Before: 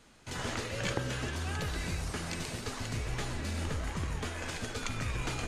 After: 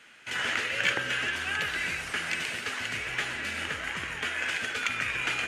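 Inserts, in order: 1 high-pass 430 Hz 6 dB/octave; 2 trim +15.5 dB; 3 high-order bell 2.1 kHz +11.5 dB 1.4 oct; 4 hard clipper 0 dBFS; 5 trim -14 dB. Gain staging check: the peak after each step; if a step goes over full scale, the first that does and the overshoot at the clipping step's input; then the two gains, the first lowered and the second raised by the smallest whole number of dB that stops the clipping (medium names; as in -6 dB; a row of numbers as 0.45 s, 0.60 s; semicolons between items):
-18.5 dBFS, -3.0 dBFS, +3.0 dBFS, 0.0 dBFS, -14.0 dBFS; step 3, 3.0 dB; step 2 +12.5 dB, step 5 -11 dB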